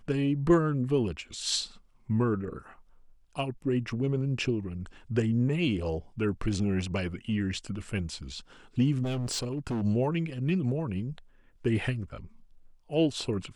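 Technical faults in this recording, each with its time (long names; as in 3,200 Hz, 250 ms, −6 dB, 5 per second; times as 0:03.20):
0:09.03–0:09.83: clipping −27.5 dBFS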